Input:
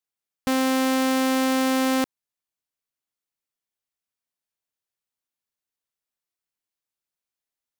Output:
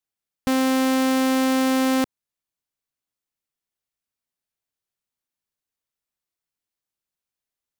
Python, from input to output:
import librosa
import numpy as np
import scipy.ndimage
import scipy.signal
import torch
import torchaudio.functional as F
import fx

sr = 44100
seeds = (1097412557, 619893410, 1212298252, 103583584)

y = fx.low_shelf(x, sr, hz=250.0, db=5.0)